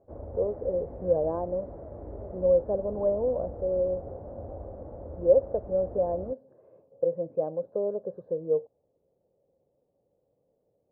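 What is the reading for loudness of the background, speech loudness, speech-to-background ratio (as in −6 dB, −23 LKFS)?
−42.0 LKFS, −28.5 LKFS, 13.5 dB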